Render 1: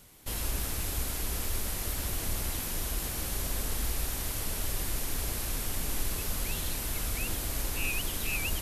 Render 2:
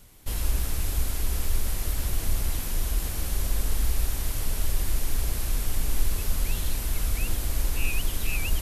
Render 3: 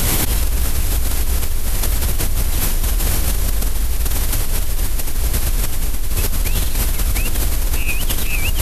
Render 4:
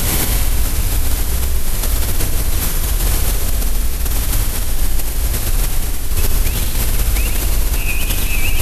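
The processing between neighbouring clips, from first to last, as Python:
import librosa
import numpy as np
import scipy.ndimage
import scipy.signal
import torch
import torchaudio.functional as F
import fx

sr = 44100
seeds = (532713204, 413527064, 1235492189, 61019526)

y1 = fx.low_shelf(x, sr, hz=77.0, db=11.5)
y2 = fx.env_flatten(y1, sr, amount_pct=100)
y3 = fx.echo_heads(y2, sr, ms=63, heads='first and second', feedback_pct=64, wet_db=-10.0)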